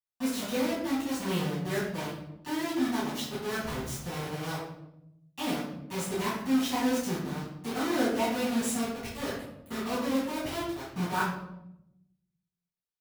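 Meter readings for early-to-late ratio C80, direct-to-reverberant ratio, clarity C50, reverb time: 5.5 dB, -12.5 dB, 2.0 dB, 0.85 s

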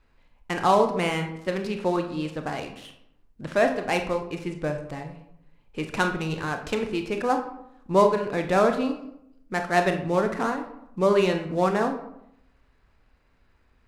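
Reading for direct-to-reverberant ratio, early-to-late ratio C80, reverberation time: 5.0 dB, 12.0 dB, 0.80 s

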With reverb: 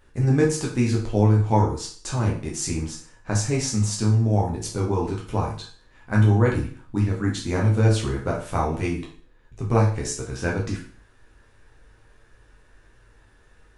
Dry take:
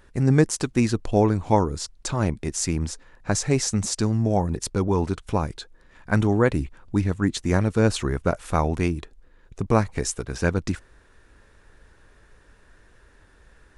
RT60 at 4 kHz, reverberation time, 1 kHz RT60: 0.45 s, 0.45 s, 0.45 s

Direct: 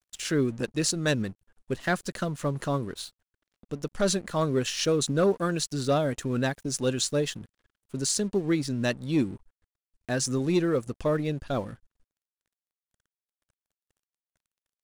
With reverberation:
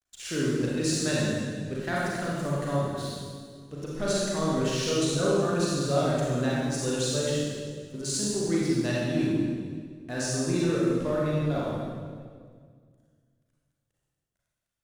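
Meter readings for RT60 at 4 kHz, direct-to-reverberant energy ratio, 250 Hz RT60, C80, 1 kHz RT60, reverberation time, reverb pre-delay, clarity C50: 1.6 s, -6.5 dB, 2.3 s, -1.0 dB, 1.7 s, 1.9 s, 33 ms, -3.5 dB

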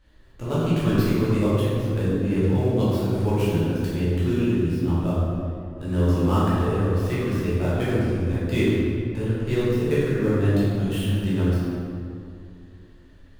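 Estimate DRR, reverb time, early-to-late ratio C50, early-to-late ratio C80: -10.5 dB, 2.3 s, -3.5 dB, -1.5 dB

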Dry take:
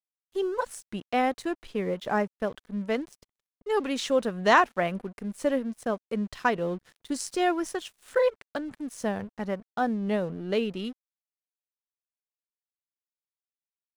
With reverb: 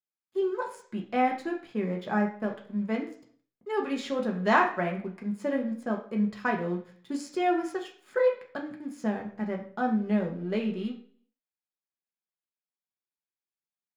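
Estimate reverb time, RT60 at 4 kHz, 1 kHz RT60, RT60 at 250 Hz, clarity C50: 0.50 s, 0.45 s, 0.50 s, 0.60 s, 9.5 dB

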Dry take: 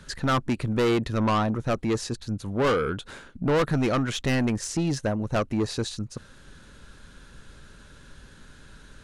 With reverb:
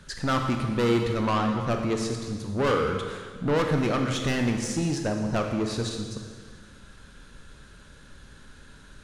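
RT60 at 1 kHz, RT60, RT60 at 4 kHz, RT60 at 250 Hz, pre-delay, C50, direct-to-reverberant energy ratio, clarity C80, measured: 1.7 s, 1.7 s, 1.6 s, 1.6 s, 22 ms, 4.5 dB, 3.0 dB, 6.0 dB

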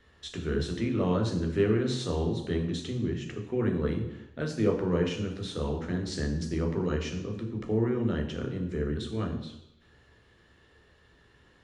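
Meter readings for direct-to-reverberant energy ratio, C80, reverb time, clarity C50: 1.5 dB, 10.0 dB, 0.85 s, 7.5 dB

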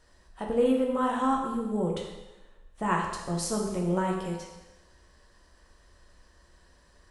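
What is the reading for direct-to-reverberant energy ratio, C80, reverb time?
-1.0 dB, 5.5 dB, 1.1 s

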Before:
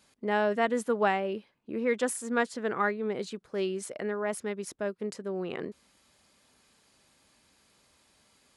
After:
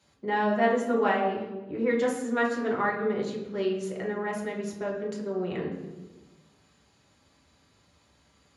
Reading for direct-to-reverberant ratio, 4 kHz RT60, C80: -3.0 dB, 0.95 s, 7.5 dB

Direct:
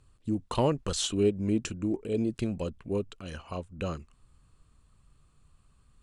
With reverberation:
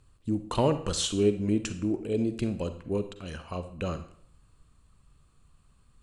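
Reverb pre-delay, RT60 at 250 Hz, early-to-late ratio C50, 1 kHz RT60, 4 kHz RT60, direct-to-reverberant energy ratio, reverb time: 38 ms, 0.70 s, 11.5 dB, 0.60 s, 0.55 s, 10.0 dB, 0.65 s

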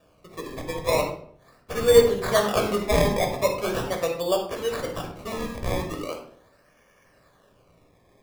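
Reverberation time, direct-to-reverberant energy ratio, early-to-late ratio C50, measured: 0.60 s, 1.5 dB, 6.0 dB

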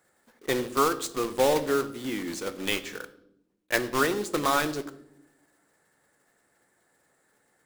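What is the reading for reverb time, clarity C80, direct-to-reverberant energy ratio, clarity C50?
0.85 s, 17.5 dB, 10.0 dB, 15.0 dB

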